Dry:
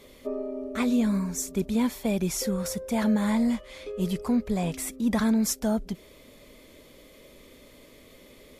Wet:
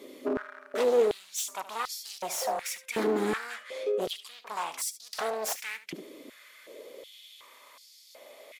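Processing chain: one-sided wavefolder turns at -29 dBFS; delay 73 ms -15 dB; in parallel at -3.5 dB: saturation -30.5 dBFS, distortion -5 dB; on the sum: step-sequenced high-pass 2.7 Hz 310–4900 Hz; trim -4.5 dB

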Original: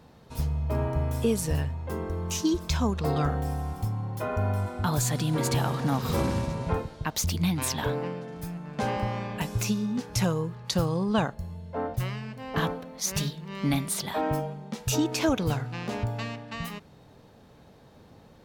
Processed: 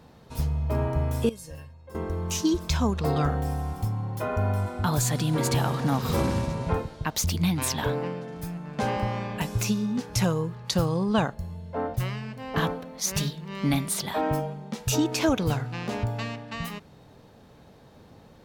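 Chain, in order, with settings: 1.29–1.95 s: feedback comb 540 Hz, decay 0.18 s, harmonics all, mix 90%; trim +1.5 dB

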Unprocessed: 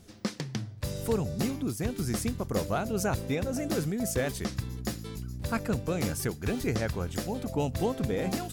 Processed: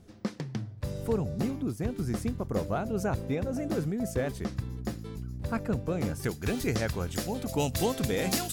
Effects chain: treble shelf 2.1 kHz -10 dB, from 6.24 s +3 dB, from 7.49 s +10.5 dB

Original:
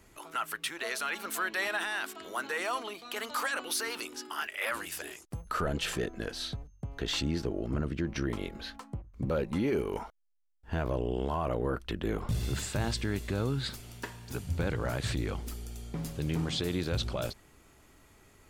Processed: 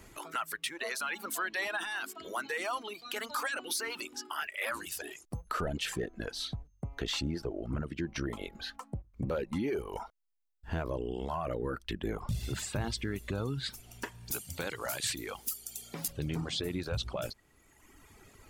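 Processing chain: reverb removal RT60 1.3 s; 14.31–16.08 s: RIAA curve recording; compression 1.5:1, threshold -49 dBFS, peak gain reduction 8 dB; trim +5.5 dB

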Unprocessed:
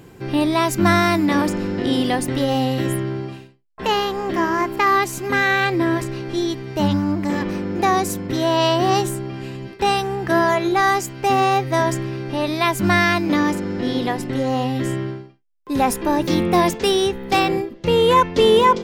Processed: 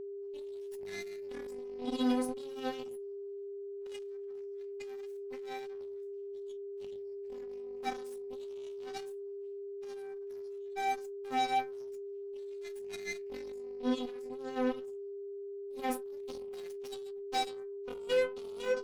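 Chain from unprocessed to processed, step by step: Chebyshev band-stop 670–2300 Hz, order 2; reverse; upward compressor, threshold -30 dBFS; reverse; inharmonic resonator 250 Hz, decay 0.49 s, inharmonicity 0.008; Chebyshev shaper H 3 -18 dB, 6 -27 dB, 7 -21 dB, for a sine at -20 dBFS; whistle 400 Hz -40 dBFS

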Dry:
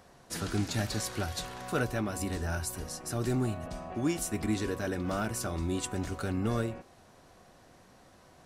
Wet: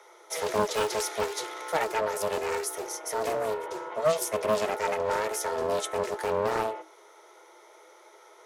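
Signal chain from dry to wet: rippled EQ curve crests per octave 1.2, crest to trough 10 dB; frequency shift +320 Hz; loudspeaker Doppler distortion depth 0.41 ms; trim +2.5 dB

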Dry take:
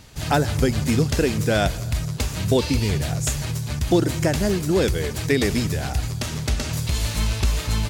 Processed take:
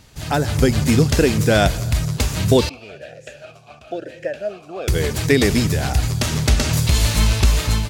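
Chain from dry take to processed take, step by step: level rider; 2.69–4.88 s: talking filter a-e 1 Hz; trim -2 dB

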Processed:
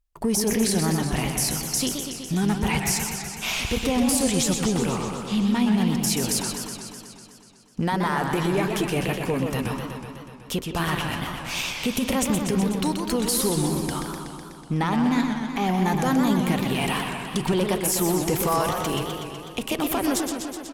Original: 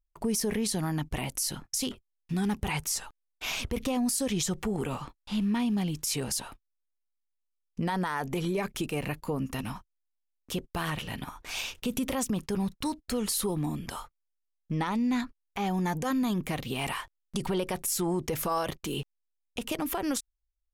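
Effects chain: Chebyshev shaper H 8 -33 dB, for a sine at -19.5 dBFS; speakerphone echo 170 ms, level -10 dB; modulated delay 124 ms, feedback 73%, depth 187 cents, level -6 dB; trim +5.5 dB

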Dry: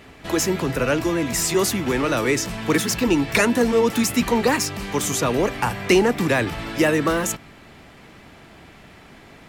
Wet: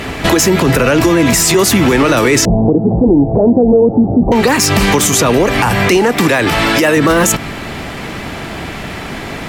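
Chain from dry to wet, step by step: gain riding within 3 dB 0.5 s; 2.45–4.32 s: Chebyshev low-pass 780 Hz, order 5; compression, threshold -23 dBFS, peak gain reduction 9.5 dB; 5.97–6.97 s: bass shelf 220 Hz -8.5 dB; loudness maximiser +21.5 dB; trim -1 dB; MP3 256 kbps 48 kHz

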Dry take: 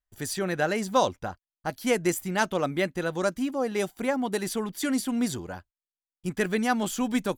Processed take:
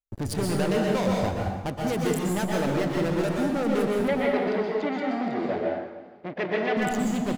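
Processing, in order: local Wiener filter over 41 samples; compression 6:1, threshold -31 dBFS, peak gain reduction 13.5 dB; waveshaping leveller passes 5; peak limiter -25 dBFS, peak gain reduction 6 dB; 4.08–6.77 s: cabinet simulation 330–4100 Hz, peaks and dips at 340 Hz +4 dB, 610 Hz +7 dB, 2.1 kHz +9 dB; feedback delay 308 ms, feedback 45%, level -20 dB; plate-style reverb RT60 1.1 s, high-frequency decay 0.75×, pre-delay 110 ms, DRR -2 dB

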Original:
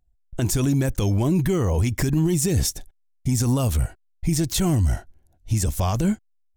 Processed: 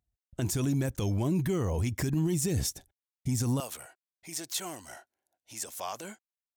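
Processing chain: high-pass 72 Hz 12 dB/octave, from 3.60 s 610 Hz; trim -7.5 dB

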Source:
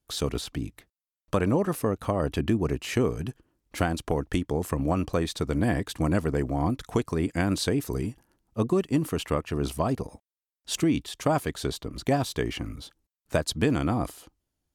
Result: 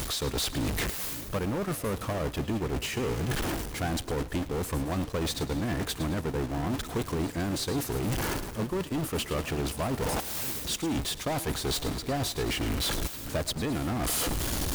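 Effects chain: jump at every zero crossing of -27.5 dBFS; reverse; compression 5:1, threshold -32 dBFS, peak gain reduction 13.5 dB; reverse; overload inside the chain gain 32 dB; two-band feedback delay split 480 Hz, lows 560 ms, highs 108 ms, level -12.5 dB; transient shaper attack +3 dB, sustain -11 dB; reverse echo 353 ms -20 dB; trim +4.5 dB

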